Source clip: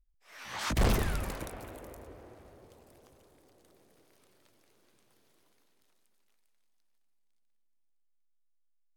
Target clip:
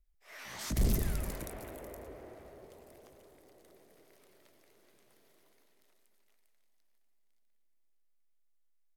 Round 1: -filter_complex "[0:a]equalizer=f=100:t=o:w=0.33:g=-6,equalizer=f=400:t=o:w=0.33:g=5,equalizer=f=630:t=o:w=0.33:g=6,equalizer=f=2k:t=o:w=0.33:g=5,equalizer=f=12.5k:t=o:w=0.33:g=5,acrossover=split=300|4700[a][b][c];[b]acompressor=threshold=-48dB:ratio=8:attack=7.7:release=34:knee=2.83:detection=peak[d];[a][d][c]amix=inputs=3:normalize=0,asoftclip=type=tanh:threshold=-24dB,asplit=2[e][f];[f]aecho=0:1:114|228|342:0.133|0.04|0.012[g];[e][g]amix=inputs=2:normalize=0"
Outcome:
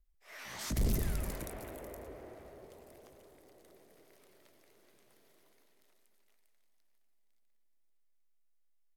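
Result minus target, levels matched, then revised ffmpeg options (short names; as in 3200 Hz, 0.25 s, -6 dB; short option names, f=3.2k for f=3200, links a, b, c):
soft clip: distortion +12 dB
-filter_complex "[0:a]equalizer=f=100:t=o:w=0.33:g=-6,equalizer=f=400:t=o:w=0.33:g=5,equalizer=f=630:t=o:w=0.33:g=6,equalizer=f=2k:t=o:w=0.33:g=5,equalizer=f=12.5k:t=o:w=0.33:g=5,acrossover=split=300|4700[a][b][c];[b]acompressor=threshold=-48dB:ratio=8:attack=7.7:release=34:knee=2.83:detection=peak[d];[a][d][c]amix=inputs=3:normalize=0,asoftclip=type=tanh:threshold=-16.5dB,asplit=2[e][f];[f]aecho=0:1:114|228|342:0.133|0.04|0.012[g];[e][g]amix=inputs=2:normalize=0"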